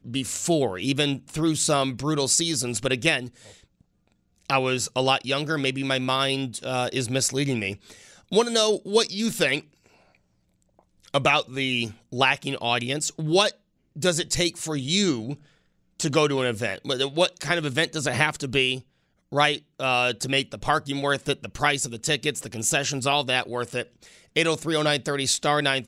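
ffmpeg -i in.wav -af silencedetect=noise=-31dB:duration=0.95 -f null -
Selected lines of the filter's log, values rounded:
silence_start: 3.27
silence_end: 4.50 | silence_duration: 1.23
silence_start: 9.60
silence_end: 11.14 | silence_duration: 1.54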